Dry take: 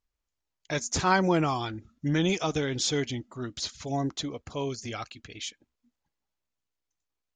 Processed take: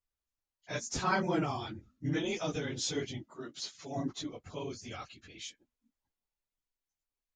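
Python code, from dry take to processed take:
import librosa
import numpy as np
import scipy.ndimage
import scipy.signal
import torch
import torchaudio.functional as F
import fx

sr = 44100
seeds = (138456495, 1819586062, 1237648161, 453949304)

y = fx.phase_scramble(x, sr, seeds[0], window_ms=50)
y = fx.highpass(y, sr, hz=220.0, slope=12, at=(3.3, 3.96))
y = y * 10.0 ** (-7.0 / 20.0)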